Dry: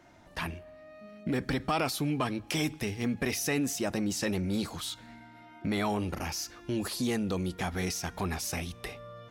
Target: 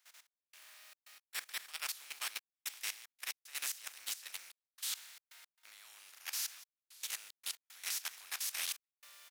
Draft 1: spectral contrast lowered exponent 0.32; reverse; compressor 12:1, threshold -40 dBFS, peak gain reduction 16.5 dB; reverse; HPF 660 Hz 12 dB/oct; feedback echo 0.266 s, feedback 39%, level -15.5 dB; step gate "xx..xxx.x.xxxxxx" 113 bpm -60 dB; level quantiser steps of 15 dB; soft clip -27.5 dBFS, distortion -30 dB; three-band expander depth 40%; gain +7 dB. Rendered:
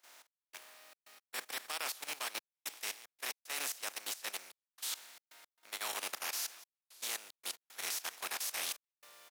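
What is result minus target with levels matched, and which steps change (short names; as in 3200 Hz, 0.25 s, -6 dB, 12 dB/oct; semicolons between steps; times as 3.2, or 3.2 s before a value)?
500 Hz band +13.0 dB
change: HPF 1500 Hz 12 dB/oct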